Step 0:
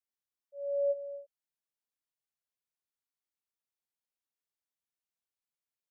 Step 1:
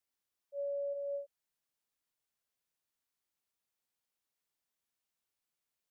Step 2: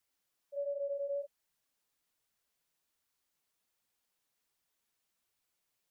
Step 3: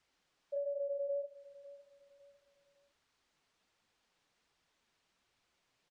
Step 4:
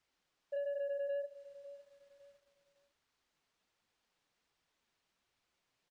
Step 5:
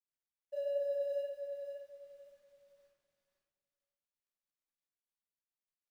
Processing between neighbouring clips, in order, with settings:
dynamic EQ 420 Hz, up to -4 dB, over -39 dBFS, Q 1; limiter -38 dBFS, peak gain reduction 11.5 dB; gain +4.5 dB
in parallel at -0.5 dB: negative-ratio compressor -43 dBFS, ratio -1; on the sum: flange 1.3 Hz, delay 0.5 ms, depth 7 ms, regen -32%; gain +1 dB
compressor, threshold -46 dBFS, peak gain reduction 11 dB; air absorption 110 m; feedback echo 0.554 s, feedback 34%, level -18 dB; gain +10 dB
sample leveller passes 1; gain -2 dB
G.711 law mismatch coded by A; on a send: feedback echo 0.516 s, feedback 23%, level -7 dB; on the sum: shoebox room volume 300 m³, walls mixed, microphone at 2.4 m; gain -4.5 dB

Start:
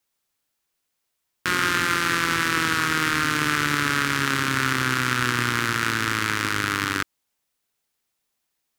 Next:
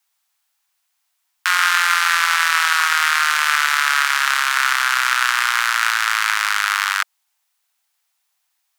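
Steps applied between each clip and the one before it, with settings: steep high-pass 690 Hz 48 dB/oct; gain +6.5 dB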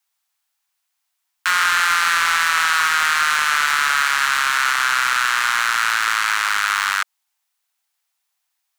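sample leveller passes 2; limiter -9 dBFS, peak gain reduction 7.5 dB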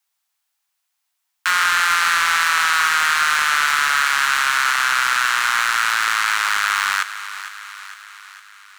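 thinning echo 0.456 s, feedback 60%, high-pass 490 Hz, level -12.5 dB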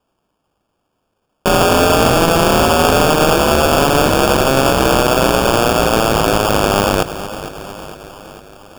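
sample-and-hold 22×; gain +5.5 dB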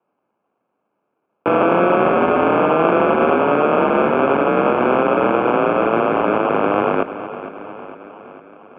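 mistuned SSB -83 Hz 290–2400 Hz; gain -1.5 dB

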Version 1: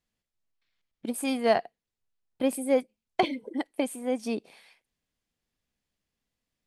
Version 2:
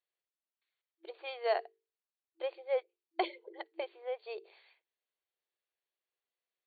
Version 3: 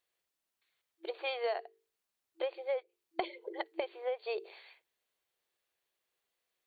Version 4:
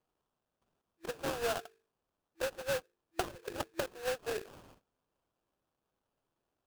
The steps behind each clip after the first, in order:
FFT band-pass 330–4600 Hz; notches 50/100/150/200/250/300/350/400/450 Hz; gain -7.5 dB
compressor 12:1, threshold -39 dBFS, peak gain reduction 14.5 dB; gain +8 dB
rattling part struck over -58 dBFS, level -34 dBFS; sample-rate reducer 2100 Hz, jitter 20%

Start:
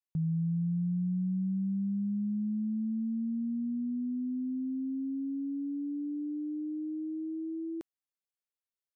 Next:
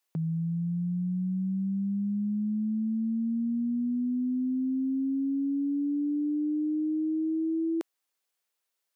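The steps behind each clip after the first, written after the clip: HPF 350 Hz 12 dB/oct; in parallel at -1 dB: vocal rider; on the sum: gain +6.5 dB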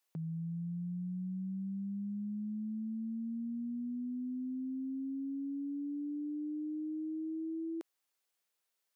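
limiter -34 dBFS, peak gain reduction 9.5 dB; gain -1.5 dB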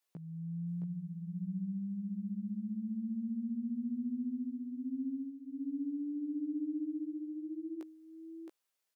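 chorus 0.25 Hz, delay 16 ms, depth 4.8 ms; echo 0.668 s -4 dB; gain +1 dB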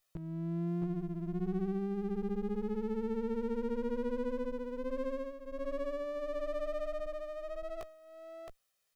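minimum comb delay 1.6 ms; gain +6.5 dB

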